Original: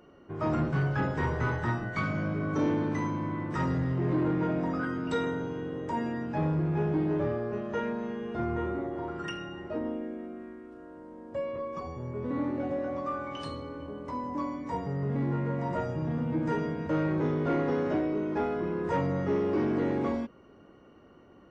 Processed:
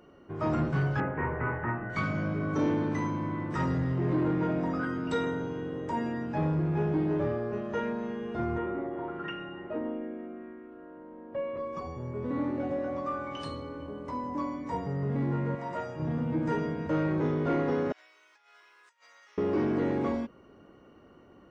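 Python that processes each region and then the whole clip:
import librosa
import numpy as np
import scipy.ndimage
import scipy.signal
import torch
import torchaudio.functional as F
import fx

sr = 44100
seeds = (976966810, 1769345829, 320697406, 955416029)

y = fx.chain(x, sr, fx.steep_lowpass(hz=2500.0, slope=48),
    fx.low_shelf(hz=200.0, db=-5.5), at=(1.0, 1.9))
y = fx.chain(y, sr, fx.lowpass(hz=3100.0, slope=24),
    fx.peak_eq(hz=75.0, db=-9.5, octaves=1.4), at=(8.58, 11.57))
y = fx.chain(y, sr, fx.highpass(hz=46.0, slope=12),
    fx.low_shelf(hz=360.0, db=-11.5), at=(15.55, 16.0))
y = fx.chain(y, sr, fx.highpass(hz=1200.0, slope=12),
    fx.differentiator(),
    fx.over_compress(threshold_db=-59.0, ratio=-0.5), at=(17.92, 19.38))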